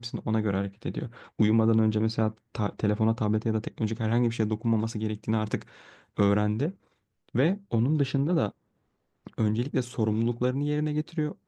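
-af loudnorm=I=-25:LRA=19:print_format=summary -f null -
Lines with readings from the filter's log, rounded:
Input Integrated:    -27.8 LUFS
Input True Peak:     -10.5 dBTP
Input LRA:             2.1 LU
Input Threshold:     -38.2 LUFS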